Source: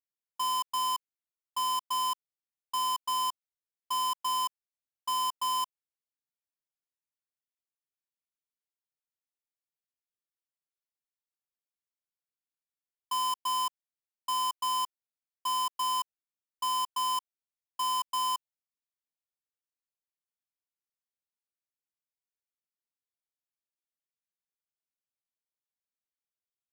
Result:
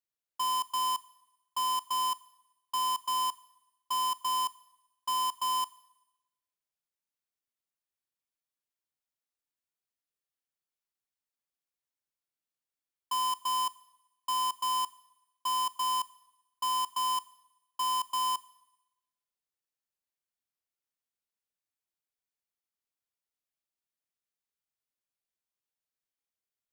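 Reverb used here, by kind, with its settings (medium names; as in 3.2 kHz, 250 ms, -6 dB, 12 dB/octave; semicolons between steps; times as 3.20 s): Schroeder reverb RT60 1 s, combs from 27 ms, DRR 18.5 dB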